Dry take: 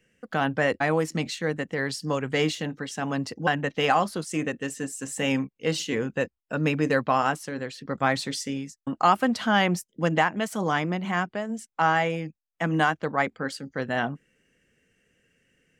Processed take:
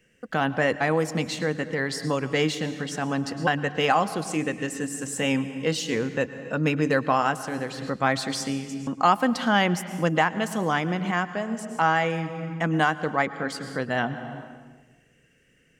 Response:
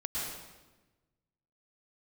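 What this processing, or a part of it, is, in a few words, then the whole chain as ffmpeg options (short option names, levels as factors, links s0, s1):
ducked reverb: -filter_complex "[0:a]asplit=3[s0][s1][s2];[1:a]atrim=start_sample=2205[s3];[s1][s3]afir=irnorm=-1:irlink=0[s4];[s2]apad=whole_len=696437[s5];[s4][s5]sidechaincompress=threshold=0.0178:ratio=6:attack=16:release=390,volume=0.596[s6];[s0][s6]amix=inputs=2:normalize=0"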